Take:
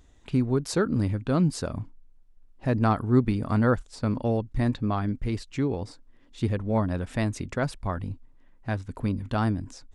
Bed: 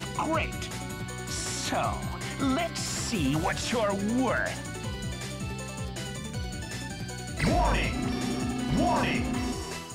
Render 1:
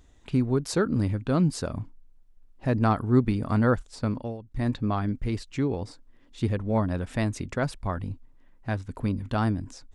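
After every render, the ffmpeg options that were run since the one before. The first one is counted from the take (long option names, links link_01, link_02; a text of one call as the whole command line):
ffmpeg -i in.wav -filter_complex "[0:a]asplit=3[link_01][link_02][link_03];[link_01]atrim=end=4.38,asetpts=PTS-STARTPTS,afade=type=out:start_time=4.03:duration=0.35:silence=0.188365[link_04];[link_02]atrim=start=4.38:end=4.39,asetpts=PTS-STARTPTS,volume=-14.5dB[link_05];[link_03]atrim=start=4.39,asetpts=PTS-STARTPTS,afade=type=in:duration=0.35:silence=0.188365[link_06];[link_04][link_05][link_06]concat=n=3:v=0:a=1" out.wav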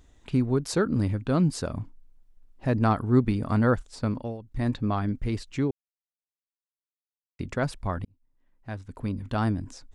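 ffmpeg -i in.wav -filter_complex "[0:a]asplit=4[link_01][link_02][link_03][link_04];[link_01]atrim=end=5.71,asetpts=PTS-STARTPTS,afade=type=out:start_time=5.706:duration=0.004:curve=hsin[link_05];[link_02]atrim=start=5.71:end=7.39,asetpts=PTS-STARTPTS,volume=0[link_06];[link_03]atrim=start=7.39:end=8.05,asetpts=PTS-STARTPTS,afade=type=in:duration=0.004:curve=hsin,afade=type=out:start_time=0.656:duration=0.004:curve=hsin[link_07];[link_04]atrim=start=8.05,asetpts=PTS-STARTPTS,afade=type=in:duration=1.48[link_08];[link_05][link_06][link_07][link_08]concat=n=4:v=0:a=1" out.wav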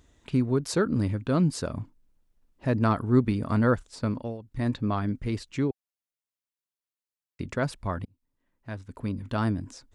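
ffmpeg -i in.wav -af "highpass=frequency=62:poles=1,bandreject=frequency=770:width=12" out.wav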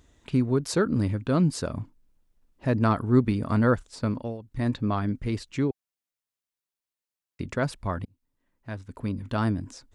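ffmpeg -i in.wav -af "volume=1dB" out.wav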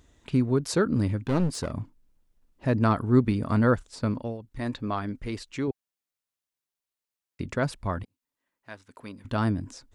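ffmpeg -i in.wav -filter_complex "[0:a]asettb=1/sr,asplit=3[link_01][link_02][link_03];[link_01]atrim=end=1.224[link_04];[link_02]atrim=start=1.22:end=1.72,asetpts=PTS-STARTPTS,afade=type=in:duration=0.004:curve=qsin,afade=type=out:start_time=0.496:duration=0.004:curve=qsin,aeval=exprs='clip(val(0),-1,0.0376)':channel_layout=same[link_05];[link_03]atrim=start=1.716[link_06];[link_04][link_05]acrossfade=duration=0.004:curve1=hsin:curve2=qsin[link_07];[link_07][link_06]acrossfade=duration=0.004:curve1=qsin:curve2=hsin,asettb=1/sr,asplit=3[link_08][link_09][link_10];[link_08]atrim=end=4.454[link_11];[link_09]atrim=start=4.45:end=5.68,asetpts=PTS-STARTPTS,afade=type=in:duration=0.004:curve=qsin,afade=type=out:start_time=1.226:duration=0.004:curve=qsin,equalizer=frequency=120:width=0.52:gain=-7.5[link_12];[link_10]atrim=start=5.676[link_13];[link_11][link_12]acrossfade=duration=0.004:curve1=hsin:curve2=qsin[link_14];[link_14][link_13]acrossfade=duration=0.004:curve1=qsin:curve2=hsin,asettb=1/sr,asplit=3[link_15][link_16][link_17];[link_15]atrim=end=8.034[link_18];[link_16]atrim=start=8.03:end=9.25,asetpts=PTS-STARTPTS,afade=type=in:duration=0.004:curve=qsin,afade=type=out:start_time=1.216:duration=0.004:curve=qsin,highpass=frequency=820:poles=1[link_19];[link_17]atrim=start=9.246[link_20];[link_18][link_19]acrossfade=duration=0.004:curve1=hsin:curve2=qsin[link_21];[link_21][link_20]acrossfade=duration=0.004:curve1=qsin:curve2=hsin" out.wav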